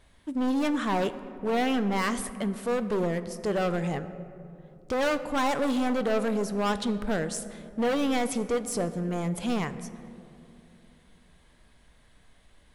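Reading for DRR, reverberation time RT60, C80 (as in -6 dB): 11.0 dB, 2.7 s, 14.0 dB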